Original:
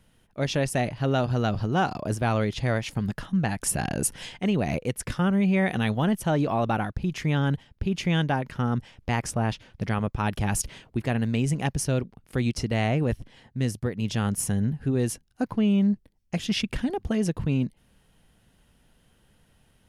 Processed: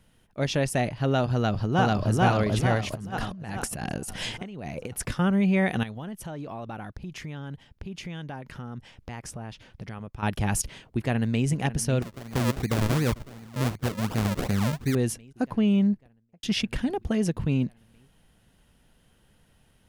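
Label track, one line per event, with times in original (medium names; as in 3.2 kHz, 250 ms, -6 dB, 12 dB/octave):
1.340000	2.220000	echo throw 440 ms, feedback 50%, level 0 dB
2.920000	5.100000	compressor with a negative ratio -34 dBFS
5.830000	10.230000	compression 3:1, threshold -37 dBFS
10.860000	11.470000	echo throw 550 ms, feedback 80%, level -13.5 dB
12.020000	14.950000	decimation with a swept rate 40× 2.7 Hz
15.780000	16.430000	studio fade out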